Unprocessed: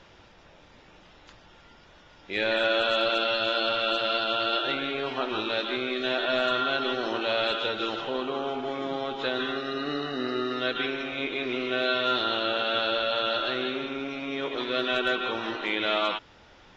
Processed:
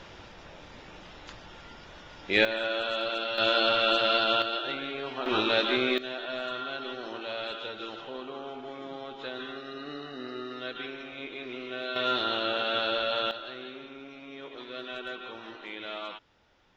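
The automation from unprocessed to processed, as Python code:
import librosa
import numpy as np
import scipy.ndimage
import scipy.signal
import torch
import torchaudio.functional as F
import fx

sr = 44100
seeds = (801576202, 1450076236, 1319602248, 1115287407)

y = fx.gain(x, sr, db=fx.steps((0.0, 6.0), (2.45, -6.0), (3.38, 2.0), (4.42, -5.0), (5.26, 3.5), (5.98, -9.0), (11.96, -2.0), (13.31, -12.0)))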